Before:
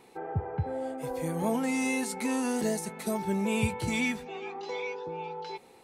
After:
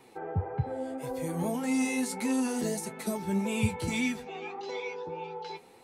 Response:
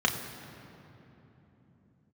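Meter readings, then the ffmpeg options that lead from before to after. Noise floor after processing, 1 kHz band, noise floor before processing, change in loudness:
-55 dBFS, -2.5 dB, -56 dBFS, -0.5 dB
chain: -filter_complex "[0:a]flanger=delay=7.4:depth=4.7:regen=42:speed=1.7:shape=sinusoidal,acrossover=split=350|3000[a][b][c];[b]acompressor=threshold=-40dB:ratio=2.5[d];[a][d][c]amix=inputs=3:normalize=0,volume=4dB"

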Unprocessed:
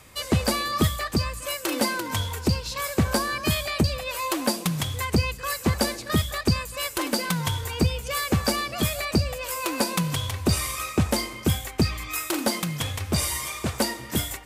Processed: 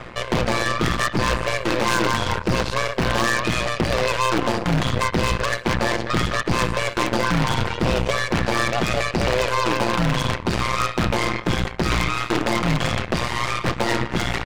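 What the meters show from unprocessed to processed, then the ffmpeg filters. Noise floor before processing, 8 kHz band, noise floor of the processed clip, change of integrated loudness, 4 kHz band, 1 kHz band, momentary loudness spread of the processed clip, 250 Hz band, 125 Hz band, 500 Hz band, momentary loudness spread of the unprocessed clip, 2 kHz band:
-39 dBFS, -2.5 dB, -33 dBFS, +4.0 dB, +2.5 dB, +8.0 dB, 3 LU, +2.5 dB, +2.0 dB, +6.5 dB, 4 LU, +8.0 dB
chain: -af "aecho=1:1:5.7:0.59,aecho=1:1:63|126|189|252:0.2|0.0818|0.0335|0.0138,areverse,acompressor=threshold=-30dB:ratio=8,areverse,apsyclip=32dB,lowpass=2k,bandreject=f=48.53:t=h:w=4,bandreject=f=97.06:t=h:w=4,bandreject=f=145.59:t=h:w=4,bandreject=f=194.12:t=h:w=4,bandreject=f=242.65:t=h:w=4,bandreject=f=291.18:t=h:w=4,bandreject=f=339.71:t=h:w=4,aeval=exprs='1.41*(cos(1*acos(clip(val(0)/1.41,-1,1)))-cos(1*PI/2))+0.501*(cos(3*acos(clip(val(0)/1.41,-1,1)))-cos(3*PI/2))+0.0794*(cos(5*acos(clip(val(0)/1.41,-1,1)))-cos(5*PI/2))+0.0158*(cos(6*acos(clip(val(0)/1.41,-1,1)))-cos(6*PI/2))+0.0708*(cos(8*acos(clip(val(0)/1.41,-1,1)))-cos(8*PI/2))':c=same,aeval=exprs='0.316*(abs(mod(val(0)/0.316+3,4)-2)-1)':c=same,tremolo=f=120:d=0.857"

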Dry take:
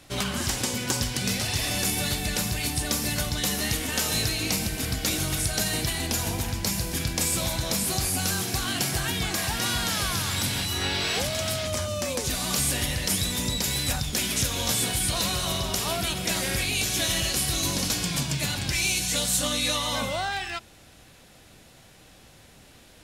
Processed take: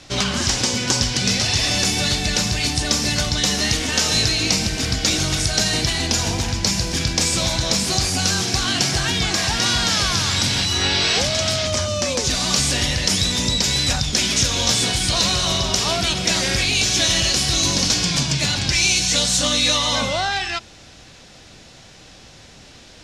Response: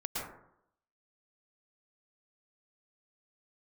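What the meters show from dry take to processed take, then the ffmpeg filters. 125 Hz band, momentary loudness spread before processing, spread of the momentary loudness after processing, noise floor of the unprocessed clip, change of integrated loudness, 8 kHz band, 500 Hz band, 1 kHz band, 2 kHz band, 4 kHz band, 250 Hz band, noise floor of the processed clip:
+6.0 dB, 4 LU, 4 LU, -52 dBFS, +7.5 dB, +6.5 dB, +6.5 dB, +6.5 dB, +7.0 dB, +9.5 dB, +6.0 dB, -45 dBFS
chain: -filter_complex "[0:a]asplit=2[a][b];[b]asoftclip=type=tanh:threshold=-22dB,volume=-5dB[c];[a][c]amix=inputs=2:normalize=0,lowpass=f=5.8k:t=q:w=1.8,volume=3dB"

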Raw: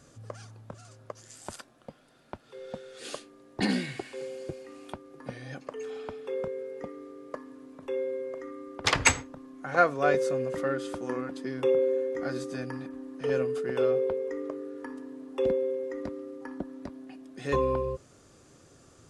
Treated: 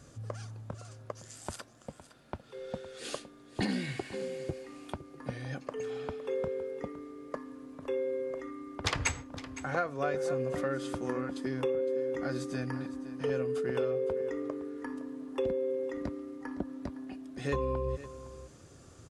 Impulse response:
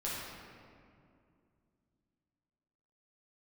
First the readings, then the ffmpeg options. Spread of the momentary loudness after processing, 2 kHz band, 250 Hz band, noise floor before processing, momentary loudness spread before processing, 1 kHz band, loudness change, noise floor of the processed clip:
14 LU, -6.5 dB, -1.5 dB, -58 dBFS, 20 LU, -6.5 dB, -5.5 dB, -56 dBFS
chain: -filter_complex "[0:a]equalizer=f=72:w=0.7:g=7,acompressor=threshold=-28dB:ratio=6,asplit=2[a][b];[b]aecho=0:1:512:0.178[c];[a][c]amix=inputs=2:normalize=0"

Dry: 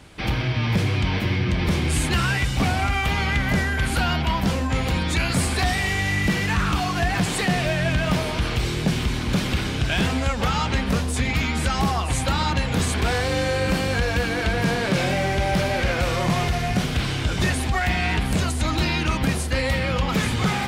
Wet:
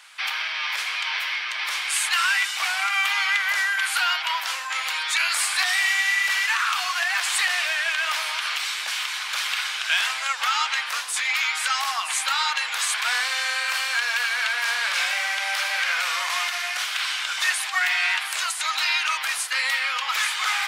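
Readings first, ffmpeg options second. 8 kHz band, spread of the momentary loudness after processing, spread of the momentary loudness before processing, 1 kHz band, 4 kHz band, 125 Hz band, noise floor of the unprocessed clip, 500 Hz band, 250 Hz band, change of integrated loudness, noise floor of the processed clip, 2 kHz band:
+4.5 dB, 5 LU, 2 LU, -1.0 dB, +4.5 dB, under -40 dB, -26 dBFS, -18.0 dB, under -40 dB, 0.0 dB, -30 dBFS, +4.5 dB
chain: -af "highpass=f=1.1k:w=0.5412,highpass=f=1.1k:w=1.3066,volume=4.5dB"

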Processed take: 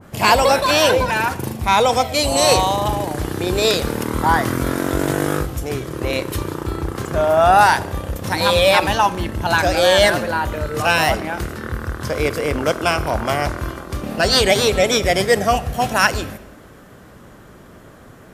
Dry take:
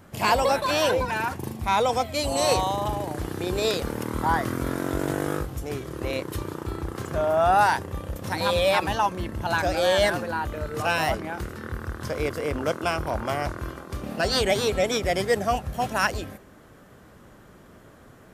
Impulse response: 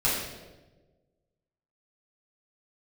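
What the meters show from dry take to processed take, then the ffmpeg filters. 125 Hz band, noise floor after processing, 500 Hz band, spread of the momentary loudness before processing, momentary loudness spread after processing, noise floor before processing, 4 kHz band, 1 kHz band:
+7.5 dB, -43 dBFS, +7.0 dB, 11 LU, 12 LU, -51 dBFS, +10.0 dB, +7.5 dB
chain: -filter_complex "[0:a]asplit=2[a][b];[1:a]atrim=start_sample=2205,adelay=39[c];[b][c]afir=irnorm=-1:irlink=0,volume=-28.5dB[d];[a][d]amix=inputs=2:normalize=0,adynamicequalizer=threshold=0.02:dfrequency=1700:dqfactor=0.7:tfrequency=1700:tqfactor=0.7:attack=5:release=100:ratio=0.375:range=1.5:mode=boostabove:tftype=highshelf,volume=7dB"

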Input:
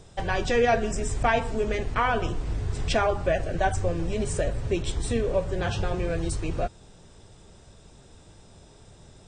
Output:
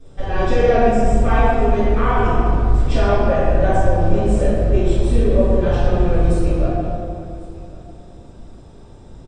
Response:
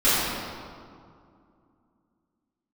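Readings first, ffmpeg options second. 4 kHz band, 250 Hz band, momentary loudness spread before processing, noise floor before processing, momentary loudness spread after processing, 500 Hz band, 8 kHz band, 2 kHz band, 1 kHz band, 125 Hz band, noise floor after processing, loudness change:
0.0 dB, +11.0 dB, 7 LU, -52 dBFS, 10 LU, +8.5 dB, -3.5 dB, +2.5 dB, +7.5 dB, +11.0 dB, -41 dBFS, +9.0 dB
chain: -filter_complex "[0:a]tiltshelf=f=1.2k:g=4.5,aecho=1:1:1098:0.0891[a];[1:a]atrim=start_sample=2205[b];[a][b]afir=irnorm=-1:irlink=0,volume=-14.5dB"

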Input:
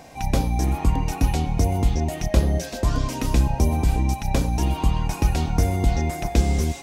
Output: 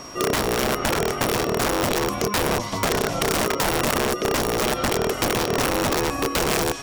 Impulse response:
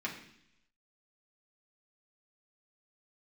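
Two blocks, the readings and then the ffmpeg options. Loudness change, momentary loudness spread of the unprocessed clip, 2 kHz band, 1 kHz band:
+1.0 dB, 3 LU, +10.5 dB, +5.0 dB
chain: -filter_complex "[0:a]acrossover=split=4300[a][b];[b]acompressor=threshold=-41dB:ratio=4:attack=1:release=60[c];[a][c]amix=inputs=2:normalize=0,aeval=exprs='(mod(7.5*val(0)+1,2)-1)/7.5':c=same,acompressor=threshold=-25dB:ratio=6,aeval=exprs='val(0)*sin(2*PI*420*n/s)':c=same,aeval=exprs='val(0)+0.00355*sin(2*PI*5600*n/s)':c=same,volume=8.5dB"

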